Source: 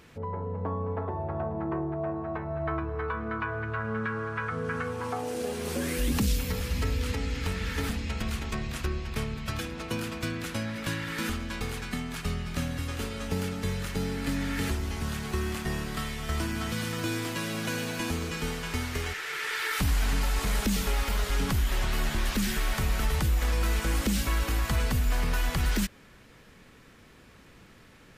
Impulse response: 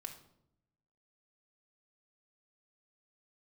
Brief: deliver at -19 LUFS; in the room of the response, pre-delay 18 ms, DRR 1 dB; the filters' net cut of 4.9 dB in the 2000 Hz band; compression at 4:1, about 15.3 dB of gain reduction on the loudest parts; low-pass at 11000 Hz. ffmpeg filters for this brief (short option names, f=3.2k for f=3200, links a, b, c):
-filter_complex "[0:a]lowpass=11k,equalizer=f=2k:t=o:g=-6.5,acompressor=threshold=-42dB:ratio=4,asplit=2[a][b];[1:a]atrim=start_sample=2205,adelay=18[c];[b][c]afir=irnorm=-1:irlink=0,volume=2.5dB[d];[a][d]amix=inputs=2:normalize=0,volume=21.5dB"